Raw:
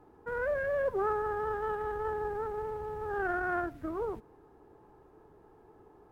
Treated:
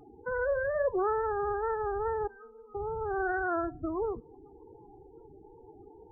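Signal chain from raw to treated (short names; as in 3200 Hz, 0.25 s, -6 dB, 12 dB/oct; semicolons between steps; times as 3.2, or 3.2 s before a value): LPF 2000 Hz 12 dB/oct; de-hum 284.7 Hz, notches 2; in parallel at +1 dB: compressor, threshold -42 dBFS, peak gain reduction 14.5 dB; on the sum: wow and flutter 84 cents; 2.27–2.75 metallic resonator 230 Hz, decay 0.43 s, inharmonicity 0.008; loudest bins only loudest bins 16; on a send at -23.5 dB: reverb RT60 0.30 s, pre-delay 18 ms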